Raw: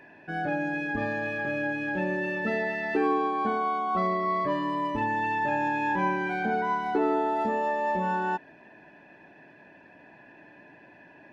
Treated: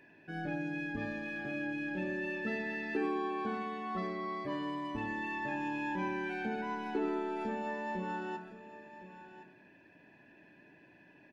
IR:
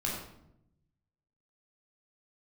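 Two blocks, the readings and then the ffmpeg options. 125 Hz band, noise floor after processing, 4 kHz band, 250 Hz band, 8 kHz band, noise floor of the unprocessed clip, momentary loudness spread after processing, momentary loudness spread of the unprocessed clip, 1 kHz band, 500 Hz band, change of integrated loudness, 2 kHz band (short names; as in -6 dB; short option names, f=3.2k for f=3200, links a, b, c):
-7.5 dB, -61 dBFS, -5.0 dB, -6.0 dB, n/a, -54 dBFS, 14 LU, 4 LU, -12.5 dB, -9.5 dB, -9.0 dB, -8.5 dB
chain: -filter_complex "[0:a]firequalizer=gain_entry='entry(360,0);entry(690,-7);entry(2700,1)':delay=0.05:min_phase=1,aecho=1:1:1064:0.2,asplit=2[a][b];[1:a]atrim=start_sample=2205,adelay=28[c];[b][c]afir=irnorm=-1:irlink=0,volume=-16dB[d];[a][d]amix=inputs=2:normalize=0,volume=-6.5dB"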